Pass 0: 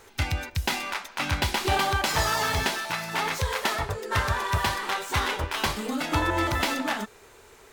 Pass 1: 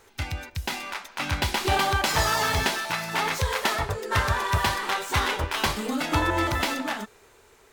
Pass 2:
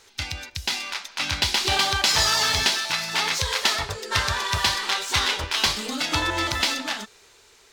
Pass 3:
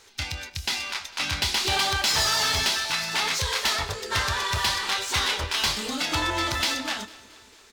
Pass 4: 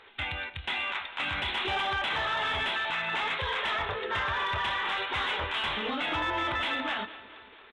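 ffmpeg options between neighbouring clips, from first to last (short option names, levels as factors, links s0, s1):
-af "dynaudnorm=f=230:g=11:m=2,volume=0.631"
-af "equalizer=f=4700:w=0.59:g=14,volume=0.631"
-filter_complex "[0:a]asoftclip=type=tanh:threshold=0.133,asplit=2[s0][s1];[s1]adelay=26,volume=0.2[s2];[s0][s2]amix=inputs=2:normalize=0,aecho=1:1:225|450|675|900|1125:0.0891|0.0517|0.03|0.0174|0.0101"
-filter_complex "[0:a]aresample=8000,aresample=44100,asplit=2[s0][s1];[s1]highpass=f=720:p=1,volume=3.55,asoftclip=type=tanh:threshold=0.211[s2];[s0][s2]amix=inputs=2:normalize=0,lowpass=f=1900:p=1,volume=0.501,alimiter=limit=0.0708:level=0:latency=1"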